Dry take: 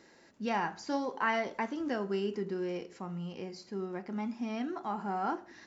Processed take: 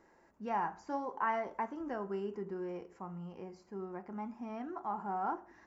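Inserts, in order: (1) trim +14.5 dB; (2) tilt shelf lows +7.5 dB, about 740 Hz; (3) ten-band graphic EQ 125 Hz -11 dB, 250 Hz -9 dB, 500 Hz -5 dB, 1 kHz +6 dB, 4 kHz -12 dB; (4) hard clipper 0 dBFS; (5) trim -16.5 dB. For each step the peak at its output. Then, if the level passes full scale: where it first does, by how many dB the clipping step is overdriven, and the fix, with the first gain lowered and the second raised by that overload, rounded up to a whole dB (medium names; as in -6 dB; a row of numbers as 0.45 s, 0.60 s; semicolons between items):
-3.5 dBFS, -4.0 dBFS, -5.5 dBFS, -5.5 dBFS, -22.0 dBFS; nothing clips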